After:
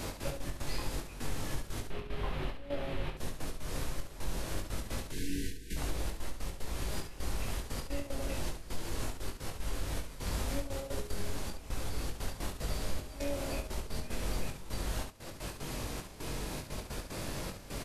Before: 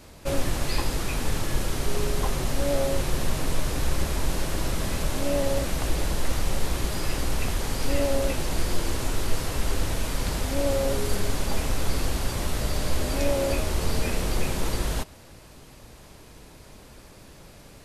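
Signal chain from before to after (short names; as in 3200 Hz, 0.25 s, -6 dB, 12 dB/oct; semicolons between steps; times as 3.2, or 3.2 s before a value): 1.9–3.17 resonant high shelf 4500 Hz -14 dB, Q 1.5; 5.11–5.77 spectral delete 480–1500 Hz; compressor 5:1, threshold -46 dBFS, peak gain reduction 26.5 dB; step gate "x.x.x.xxxx..xxx" 150 bpm -12 dB; early reflections 21 ms -4.5 dB, 70 ms -7 dB; gain +10 dB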